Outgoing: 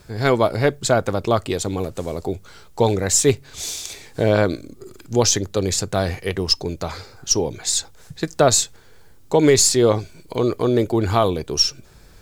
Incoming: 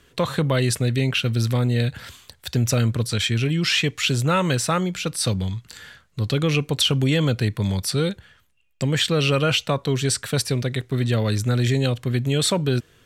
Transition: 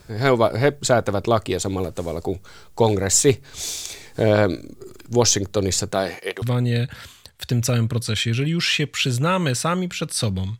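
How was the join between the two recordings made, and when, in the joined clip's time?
outgoing
5.91–6.42 s: high-pass 160 Hz -> 610 Hz
6.42 s: go over to incoming from 1.46 s

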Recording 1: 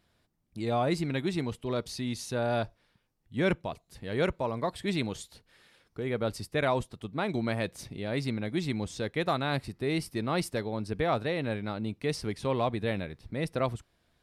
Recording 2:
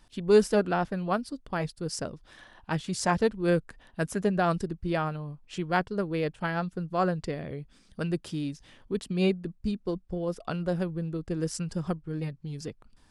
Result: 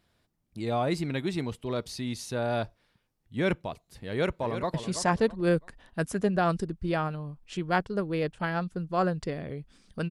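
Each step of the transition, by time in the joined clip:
recording 1
4.08–4.74 s: echo throw 330 ms, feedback 30%, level -9.5 dB
4.74 s: go over to recording 2 from 2.75 s

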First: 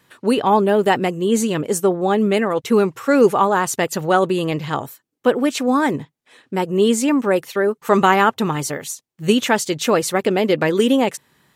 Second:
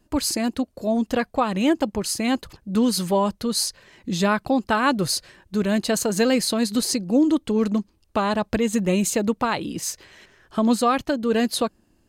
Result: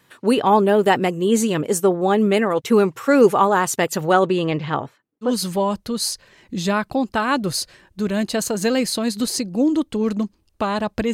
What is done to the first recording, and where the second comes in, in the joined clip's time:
first
4.13–5.33 s: low-pass 8.2 kHz -> 1.4 kHz
5.27 s: go over to second from 2.82 s, crossfade 0.12 s

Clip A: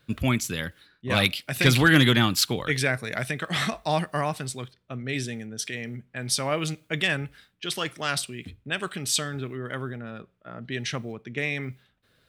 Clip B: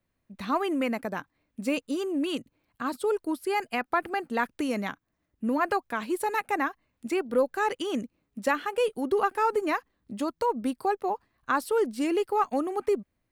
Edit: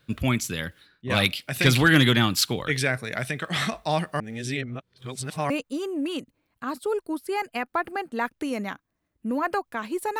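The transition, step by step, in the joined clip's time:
clip A
4.20–5.50 s: reverse
5.50 s: go over to clip B from 1.68 s

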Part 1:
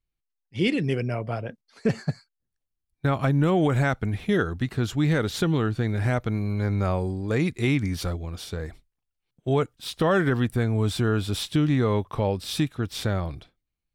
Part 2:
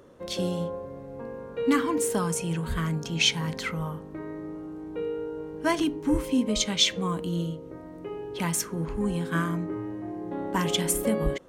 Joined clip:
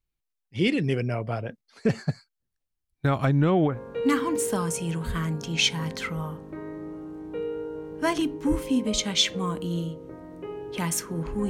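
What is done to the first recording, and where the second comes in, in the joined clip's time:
part 1
3.25–3.80 s: low-pass 8.7 kHz -> 1.4 kHz
3.72 s: go over to part 2 from 1.34 s, crossfade 0.16 s

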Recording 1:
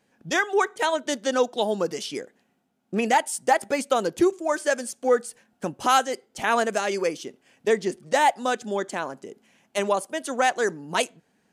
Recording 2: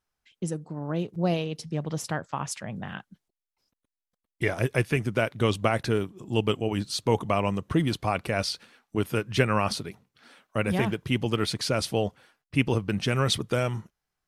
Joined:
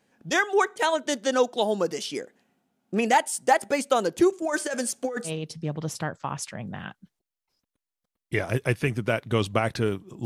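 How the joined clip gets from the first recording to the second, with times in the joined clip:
recording 1
4.42–5.32 s: compressor with a negative ratio -27 dBFS, ratio -1
5.28 s: go over to recording 2 from 1.37 s, crossfade 0.08 s

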